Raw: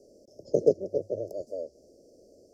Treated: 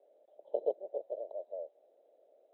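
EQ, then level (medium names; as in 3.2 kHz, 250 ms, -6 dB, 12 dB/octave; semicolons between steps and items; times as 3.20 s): Chebyshev high-pass 960 Hz, order 3; brick-wall FIR low-pass 4 kHz; distance through air 350 m; +12.5 dB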